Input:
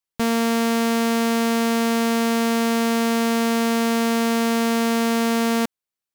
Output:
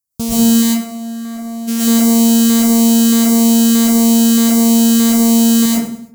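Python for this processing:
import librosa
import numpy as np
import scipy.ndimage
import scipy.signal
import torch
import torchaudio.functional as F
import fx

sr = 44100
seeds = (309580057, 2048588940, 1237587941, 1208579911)

y = scipy.signal.sosfilt(scipy.signal.butter(2, 42.0, 'highpass', fs=sr, output='sos'), x)
y = fx.bass_treble(y, sr, bass_db=15, treble_db=15)
y = fx.tube_stage(y, sr, drive_db=26.0, bias=0.5, at=(0.61, 1.67), fade=0.02)
y = fx.filter_lfo_notch(y, sr, shape='saw_down', hz=1.6, low_hz=520.0, high_hz=3500.0, q=0.75)
y = fx.echo_feedback(y, sr, ms=101, feedback_pct=36, wet_db=-13.5)
y = fx.rev_freeverb(y, sr, rt60_s=0.52, hf_ratio=0.45, predelay_ms=80, drr_db=-8.0)
y = F.gain(torch.from_numpy(y), -5.5).numpy()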